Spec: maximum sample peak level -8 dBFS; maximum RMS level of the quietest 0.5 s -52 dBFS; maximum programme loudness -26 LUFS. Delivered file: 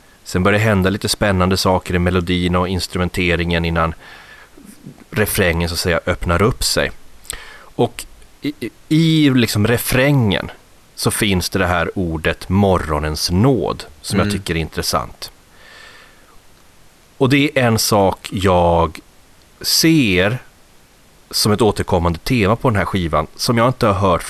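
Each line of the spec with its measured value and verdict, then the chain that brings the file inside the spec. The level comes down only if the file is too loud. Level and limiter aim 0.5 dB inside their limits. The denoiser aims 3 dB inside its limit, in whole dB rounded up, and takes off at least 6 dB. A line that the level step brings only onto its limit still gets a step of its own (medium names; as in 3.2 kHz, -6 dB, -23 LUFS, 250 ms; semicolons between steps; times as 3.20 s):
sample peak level -3.5 dBFS: fail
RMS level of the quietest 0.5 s -48 dBFS: fail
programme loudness -16.5 LUFS: fail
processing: trim -10 dB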